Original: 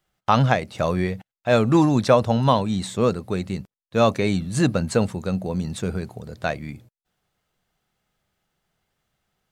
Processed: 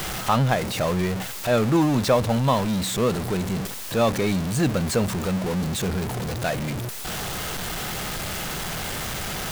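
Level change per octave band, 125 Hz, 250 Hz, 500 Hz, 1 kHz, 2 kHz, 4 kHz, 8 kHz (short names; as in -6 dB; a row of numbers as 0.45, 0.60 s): -0.5, -1.0, -2.0, -2.0, +1.0, +4.5, +7.5 dB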